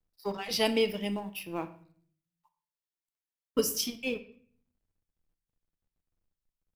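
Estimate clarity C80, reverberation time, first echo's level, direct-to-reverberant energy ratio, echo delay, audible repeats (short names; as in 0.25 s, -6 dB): 17.5 dB, 0.50 s, none, 9.5 dB, none, none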